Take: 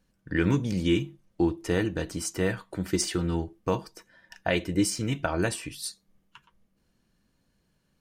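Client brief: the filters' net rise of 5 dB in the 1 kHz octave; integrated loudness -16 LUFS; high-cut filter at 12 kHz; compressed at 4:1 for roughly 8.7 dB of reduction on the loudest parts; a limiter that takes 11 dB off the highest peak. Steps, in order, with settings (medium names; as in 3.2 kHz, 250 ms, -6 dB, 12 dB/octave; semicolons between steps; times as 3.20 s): low-pass 12 kHz; peaking EQ 1 kHz +6.5 dB; compression 4:1, threshold -29 dBFS; trim +20.5 dB; peak limiter -4 dBFS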